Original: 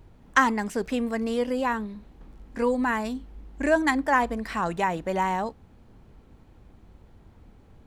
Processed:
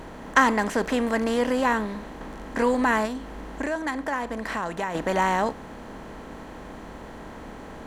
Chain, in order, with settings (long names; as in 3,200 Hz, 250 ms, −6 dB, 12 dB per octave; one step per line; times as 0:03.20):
compressor on every frequency bin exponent 0.6
0:03.05–0:04.95: downward compressor 2.5 to 1, threshold −29 dBFS, peak gain reduction 10 dB